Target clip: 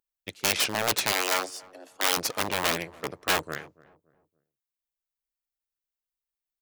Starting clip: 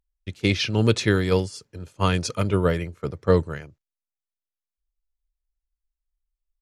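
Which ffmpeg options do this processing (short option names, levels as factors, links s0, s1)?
-filter_complex "[0:a]aeval=exprs='0.631*(cos(1*acos(clip(val(0)/0.631,-1,1)))-cos(1*PI/2))+0.141*(cos(8*acos(clip(val(0)/0.631,-1,1)))-cos(8*PI/2))':c=same,lowpass=f=1700:p=1,lowshelf=f=70:g=-10,aeval=exprs='0.133*(abs(mod(val(0)/0.133+3,4)-2)-1)':c=same,aemphasis=mode=production:type=riaa,asettb=1/sr,asplit=3[s0][s1][s2];[s0]atrim=end=1.124[s3];[s1]atrim=start=1.12:end=2.17,asetpts=PTS-STARTPTS,afade=t=in:d=0.004:c=qsin,afade=t=out:st=1.046:d=0.004:c=qsin,afreqshift=180[s4];[s2]atrim=start=2.166[s5];[s3][s4]acrossfade=d=0.004:c1=hsin:c2=qsin[s6];[s6][s5]acrossfade=d=0.004:c1=qsin:c2=hsin,asplit=2[s7][s8];[s8]adelay=285,lowpass=f=940:p=1,volume=0.1,asplit=2[s9][s10];[s10]adelay=285,lowpass=f=940:p=1,volume=0.39,asplit=2[s11][s12];[s12]adelay=285,lowpass=f=940:p=1,volume=0.39[s13];[s9][s11][s13]amix=inputs=3:normalize=0[s14];[s7][s14]amix=inputs=2:normalize=0"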